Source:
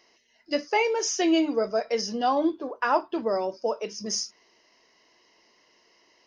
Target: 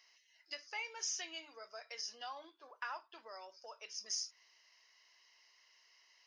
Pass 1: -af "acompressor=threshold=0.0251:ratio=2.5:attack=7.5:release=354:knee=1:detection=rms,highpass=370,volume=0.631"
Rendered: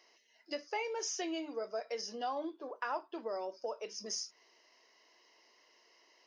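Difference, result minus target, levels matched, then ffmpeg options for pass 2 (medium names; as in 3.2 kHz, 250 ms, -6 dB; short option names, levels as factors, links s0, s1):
500 Hz band +11.5 dB
-af "acompressor=threshold=0.0251:ratio=2.5:attack=7.5:release=354:knee=1:detection=rms,highpass=1400,volume=0.631"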